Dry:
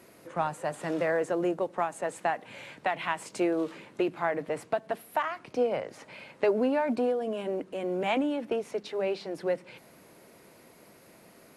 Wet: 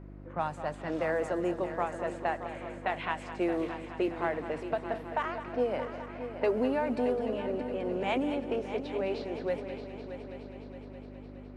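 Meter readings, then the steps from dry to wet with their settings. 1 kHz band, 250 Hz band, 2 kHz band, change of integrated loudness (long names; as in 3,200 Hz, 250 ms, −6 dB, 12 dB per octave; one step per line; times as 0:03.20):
−2.0 dB, −1.5 dB, −2.5 dB, −2.5 dB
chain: low-pass that shuts in the quiet parts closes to 1,300 Hz, open at −23 dBFS
hum with harmonics 50 Hz, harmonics 7, −44 dBFS −4 dB per octave
echo machine with several playback heads 208 ms, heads first and third, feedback 67%, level −12 dB
level −3 dB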